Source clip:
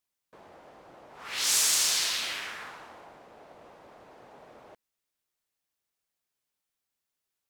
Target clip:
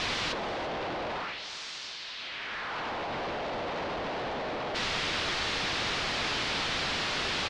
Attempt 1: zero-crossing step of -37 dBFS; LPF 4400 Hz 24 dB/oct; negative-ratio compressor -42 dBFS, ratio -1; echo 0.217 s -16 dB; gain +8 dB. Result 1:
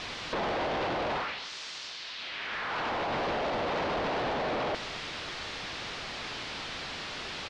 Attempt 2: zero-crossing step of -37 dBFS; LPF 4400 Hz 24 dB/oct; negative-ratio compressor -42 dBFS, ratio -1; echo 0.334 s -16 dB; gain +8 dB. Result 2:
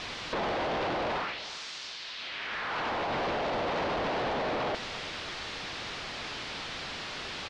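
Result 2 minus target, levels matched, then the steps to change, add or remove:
zero-crossing step: distortion -5 dB
change: zero-crossing step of -31 dBFS

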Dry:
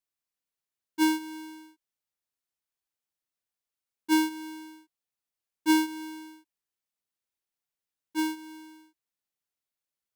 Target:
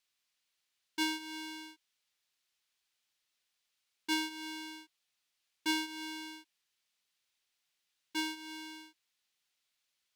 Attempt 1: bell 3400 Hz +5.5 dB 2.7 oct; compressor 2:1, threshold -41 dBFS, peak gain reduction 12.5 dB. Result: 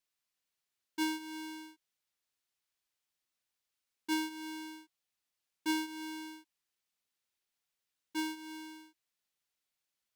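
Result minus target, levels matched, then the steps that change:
4000 Hz band -4.0 dB
change: bell 3400 Hz +14 dB 2.7 oct

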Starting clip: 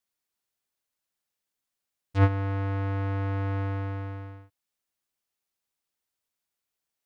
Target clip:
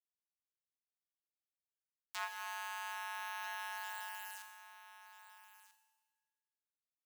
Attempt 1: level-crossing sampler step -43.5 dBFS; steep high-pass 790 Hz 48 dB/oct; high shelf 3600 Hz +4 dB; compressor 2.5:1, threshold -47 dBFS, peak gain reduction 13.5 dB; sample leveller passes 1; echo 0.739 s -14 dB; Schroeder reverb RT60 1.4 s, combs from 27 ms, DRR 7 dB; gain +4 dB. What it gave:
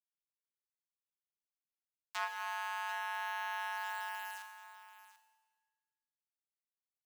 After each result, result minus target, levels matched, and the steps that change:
echo 0.551 s early; 8000 Hz band -6.0 dB; compressor: peak gain reduction -5.5 dB
change: echo 1.29 s -14 dB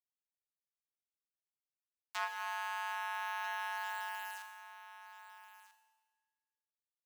8000 Hz band -6.0 dB; compressor: peak gain reduction -5.5 dB
change: high shelf 3600 Hz +14 dB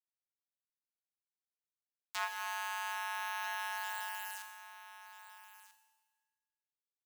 compressor: peak gain reduction -4.5 dB
change: compressor 2.5:1, threshold -54.5 dBFS, peak gain reduction 19 dB

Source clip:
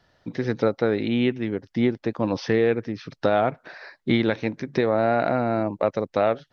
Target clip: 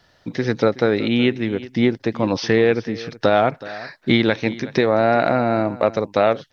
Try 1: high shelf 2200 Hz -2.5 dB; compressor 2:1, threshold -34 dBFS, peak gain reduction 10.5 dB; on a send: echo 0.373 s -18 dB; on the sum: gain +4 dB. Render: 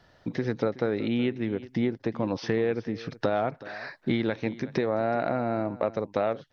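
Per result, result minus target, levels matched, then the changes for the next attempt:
compressor: peak gain reduction +10.5 dB; 4000 Hz band -4.5 dB
remove: compressor 2:1, threshold -34 dBFS, peak gain reduction 10.5 dB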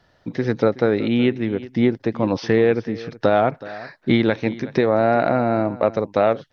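4000 Hz band -5.5 dB
change: high shelf 2200 Hz +6 dB

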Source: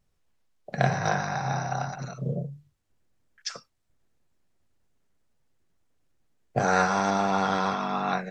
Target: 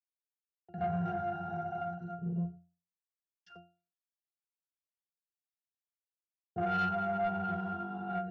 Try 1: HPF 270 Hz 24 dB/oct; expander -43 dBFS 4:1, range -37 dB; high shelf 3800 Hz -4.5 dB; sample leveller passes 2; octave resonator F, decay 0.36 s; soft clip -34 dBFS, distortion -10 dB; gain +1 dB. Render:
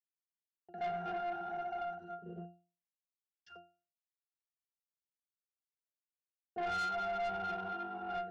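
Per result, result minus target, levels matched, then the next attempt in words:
250 Hz band -8.5 dB; soft clip: distortion +8 dB
expander -43 dBFS 4:1, range -37 dB; high shelf 3800 Hz -4.5 dB; sample leveller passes 2; octave resonator F, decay 0.36 s; soft clip -34 dBFS, distortion -10 dB; gain +1 dB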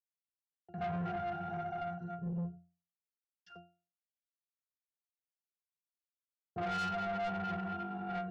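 soft clip: distortion +9 dB
expander -43 dBFS 4:1, range -37 dB; high shelf 3800 Hz -4.5 dB; sample leveller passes 2; octave resonator F, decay 0.36 s; soft clip -26 dBFS, distortion -18 dB; gain +1 dB

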